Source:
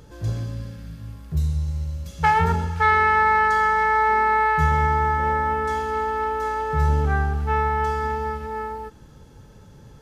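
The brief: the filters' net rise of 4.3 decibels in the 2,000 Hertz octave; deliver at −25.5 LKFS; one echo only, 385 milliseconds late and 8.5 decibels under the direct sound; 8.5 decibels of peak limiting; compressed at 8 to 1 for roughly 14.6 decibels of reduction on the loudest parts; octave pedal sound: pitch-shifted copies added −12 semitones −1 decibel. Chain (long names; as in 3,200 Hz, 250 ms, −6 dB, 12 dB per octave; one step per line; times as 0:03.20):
parametric band 2,000 Hz +5 dB
downward compressor 8 to 1, threshold −27 dBFS
brickwall limiter −24 dBFS
single-tap delay 385 ms −8.5 dB
pitch-shifted copies added −12 semitones −1 dB
level +5.5 dB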